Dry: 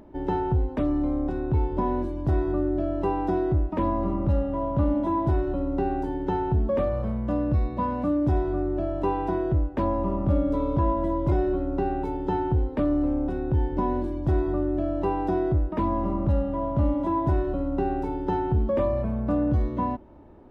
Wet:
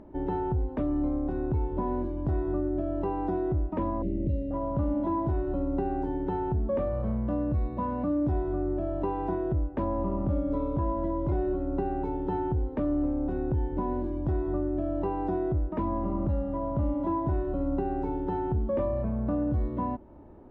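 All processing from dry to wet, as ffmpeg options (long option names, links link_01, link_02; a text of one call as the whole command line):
ffmpeg -i in.wav -filter_complex "[0:a]asettb=1/sr,asplit=3[link_01][link_02][link_03];[link_01]atrim=end=4.024[link_04];[link_02]atrim=start=4.02:end=4.51,asetpts=PTS-STARTPTS,afade=type=in:duration=0.004:curve=qsin,afade=type=out:start_time=0.486:duration=0.004:curve=qsin,asuperstop=centerf=1100:order=8:qfactor=0.77,asplit=2[link_05][link_06];[link_06]adelay=28,volume=-11dB[link_07];[link_05][link_07]amix=inputs=2:normalize=0,atrim=end_sample=21609[link_08];[link_03]atrim=start=4.506[link_09];[link_04][link_08]acrossfade=duration=0.004:curve1=hsin:curve2=qsin[link_10];[link_10][link_09]acrossfade=duration=0.004:curve1=qsin:curve2=hsin,lowpass=frequency=1500:poles=1,alimiter=limit=-20dB:level=0:latency=1:release=361" out.wav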